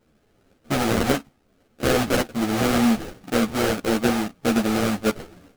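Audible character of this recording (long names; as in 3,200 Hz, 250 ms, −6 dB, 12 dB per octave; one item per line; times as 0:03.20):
aliases and images of a low sample rate 1,000 Hz, jitter 20%
a shimmering, thickened sound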